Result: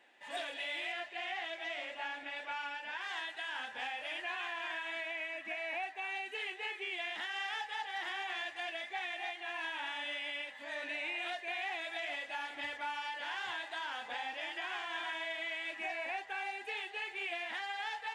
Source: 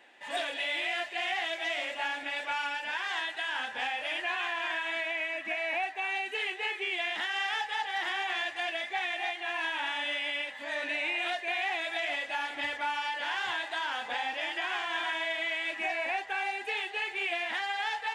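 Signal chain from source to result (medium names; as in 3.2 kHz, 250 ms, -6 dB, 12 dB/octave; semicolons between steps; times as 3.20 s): 0.92–3.01 s: treble shelf 7.1 kHz -11.5 dB; trim -7 dB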